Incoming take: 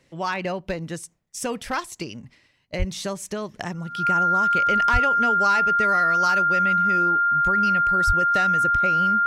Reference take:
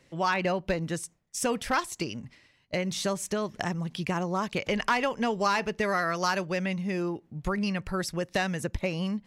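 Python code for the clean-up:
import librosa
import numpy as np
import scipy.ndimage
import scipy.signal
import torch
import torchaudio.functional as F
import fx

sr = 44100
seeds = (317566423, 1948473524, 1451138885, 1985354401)

y = fx.notch(x, sr, hz=1400.0, q=30.0)
y = fx.fix_deplosive(y, sr, at_s=(2.78, 4.92, 8.06))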